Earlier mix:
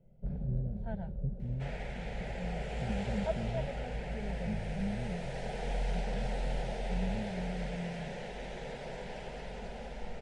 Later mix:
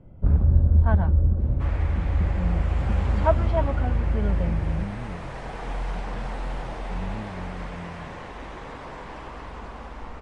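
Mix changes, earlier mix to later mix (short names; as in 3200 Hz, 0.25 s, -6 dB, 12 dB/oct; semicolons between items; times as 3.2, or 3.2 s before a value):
first sound +11.0 dB; master: remove fixed phaser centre 300 Hz, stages 6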